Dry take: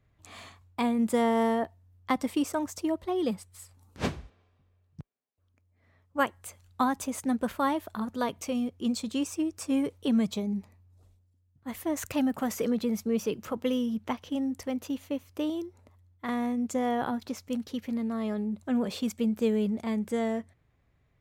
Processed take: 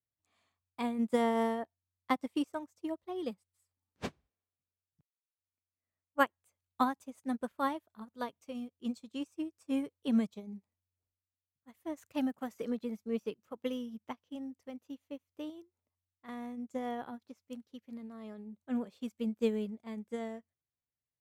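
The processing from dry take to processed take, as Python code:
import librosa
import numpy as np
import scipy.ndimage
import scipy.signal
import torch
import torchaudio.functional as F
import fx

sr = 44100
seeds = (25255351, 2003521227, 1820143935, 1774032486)

y = fx.low_shelf(x, sr, hz=63.0, db=-11.5)
y = fx.upward_expand(y, sr, threshold_db=-41.0, expansion=2.5)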